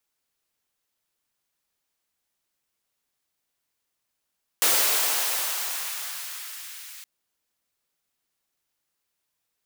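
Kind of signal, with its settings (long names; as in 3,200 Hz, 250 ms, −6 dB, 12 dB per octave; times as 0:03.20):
filter sweep on noise white, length 2.42 s highpass, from 380 Hz, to 2,000 Hz, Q 1, exponential, gain ramp −23.5 dB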